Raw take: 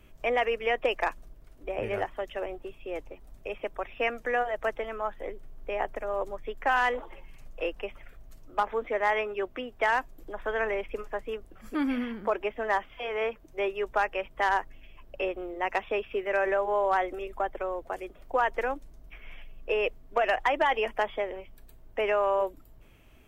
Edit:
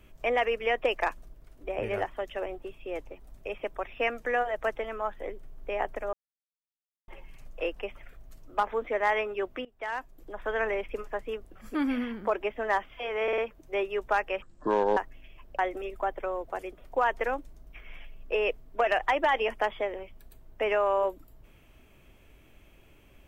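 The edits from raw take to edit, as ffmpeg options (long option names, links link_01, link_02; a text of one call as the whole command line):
ffmpeg -i in.wav -filter_complex "[0:a]asplit=10[link_01][link_02][link_03][link_04][link_05][link_06][link_07][link_08][link_09][link_10];[link_01]atrim=end=6.13,asetpts=PTS-STARTPTS,afade=type=out:start_time=6.126:duration=0.004:curve=hsin[link_11];[link_02]atrim=start=6.13:end=7.08,asetpts=PTS-STARTPTS,volume=0[link_12];[link_03]atrim=start=7.08:end=9.65,asetpts=PTS-STARTPTS,afade=type=in:duration=0.004:curve=hsin,afade=type=out:start_time=2.566:duration=0.004:curve=hsin:silence=0.112202[link_13];[link_04]atrim=start=9.65:end=13.282,asetpts=PTS-STARTPTS,afade=type=in:duration=0.88:silence=0.112202[link_14];[link_05]atrim=start=13.228:end=13.282[link_15];[link_06]atrim=start=13.228:end=13.282[link_16];[link_07]atrim=start=13.228:end=14.274[link_17];[link_08]atrim=start=14.27:end=14.56,asetpts=PTS-STARTPTS,asetrate=23373,aresample=44100,atrim=end_sample=24130,asetpts=PTS-STARTPTS[link_18];[link_09]atrim=start=14.556:end=15.182[link_19];[link_10]atrim=start=16.958[link_20];[link_11][link_12][link_13][link_14]concat=n=4:v=0:a=1[link_21];[link_21][link_15]acrossfade=duration=0.004:curve1=hsin:curve2=hsin[link_22];[link_22][link_16]acrossfade=duration=0.004:curve1=hsin:curve2=hsin[link_23];[link_23][link_17]acrossfade=duration=0.004:curve1=hsin:curve2=hsin[link_24];[link_24][link_18]acrossfade=duration=0.004:curve1=hsin:curve2=hsin[link_25];[link_25][link_19]acrossfade=duration=0.004:curve1=hsin:curve2=hsin[link_26];[link_26][link_20]acrossfade=duration=0.004:curve1=hsin:curve2=hsin" out.wav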